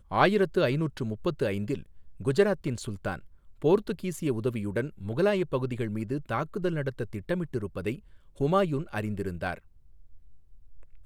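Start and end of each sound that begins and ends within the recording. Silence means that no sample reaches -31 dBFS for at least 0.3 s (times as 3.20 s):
2.23–3.16 s
3.64–7.94 s
8.41–9.54 s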